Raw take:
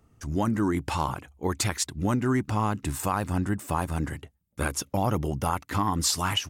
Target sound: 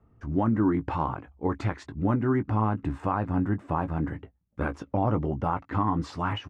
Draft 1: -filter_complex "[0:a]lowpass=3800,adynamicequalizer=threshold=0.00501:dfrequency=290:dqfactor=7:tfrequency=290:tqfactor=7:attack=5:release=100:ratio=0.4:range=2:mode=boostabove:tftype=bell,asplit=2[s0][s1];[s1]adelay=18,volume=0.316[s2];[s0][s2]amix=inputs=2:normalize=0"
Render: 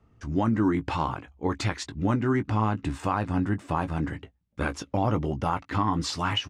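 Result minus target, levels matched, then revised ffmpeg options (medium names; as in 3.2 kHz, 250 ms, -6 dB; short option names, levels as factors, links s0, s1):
4 kHz band +11.5 dB
-filter_complex "[0:a]lowpass=1500,adynamicequalizer=threshold=0.00501:dfrequency=290:dqfactor=7:tfrequency=290:tqfactor=7:attack=5:release=100:ratio=0.4:range=2:mode=boostabove:tftype=bell,asplit=2[s0][s1];[s1]adelay=18,volume=0.316[s2];[s0][s2]amix=inputs=2:normalize=0"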